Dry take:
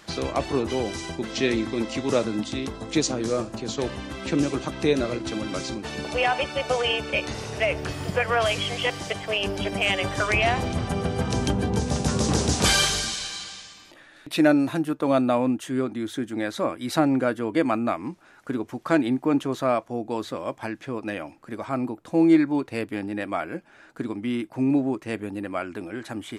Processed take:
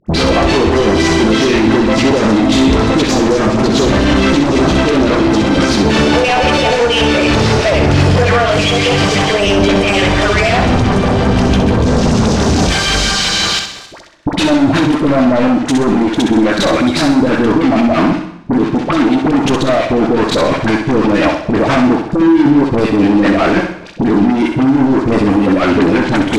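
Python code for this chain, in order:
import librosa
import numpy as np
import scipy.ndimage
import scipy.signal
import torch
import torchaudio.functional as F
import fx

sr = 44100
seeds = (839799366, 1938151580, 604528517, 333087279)

p1 = fx.high_shelf(x, sr, hz=5700.0, db=-3.0)
p2 = fx.rider(p1, sr, range_db=3, speed_s=2.0)
p3 = fx.leveller(p2, sr, passes=5)
p4 = fx.level_steps(p3, sr, step_db=22)
p5 = fx.filter_lfo_notch(p4, sr, shape='saw_down', hz=5.9, low_hz=480.0, high_hz=4200.0, q=1.0)
p6 = fx.dispersion(p5, sr, late='highs', ms=67.0, hz=870.0)
p7 = fx.fold_sine(p6, sr, drive_db=12, ceiling_db=-7.0)
p8 = fx.air_absorb(p7, sr, metres=99.0)
p9 = p8 + fx.echo_feedback(p8, sr, ms=64, feedback_pct=39, wet_db=-6.0, dry=0)
p10 = fx.rev_gated(p9, sr, seeds[0], gate_ms=370, shape='falling', drr_db=11.5)
y = p10 * librosa.db_to_amplitude(-1.0)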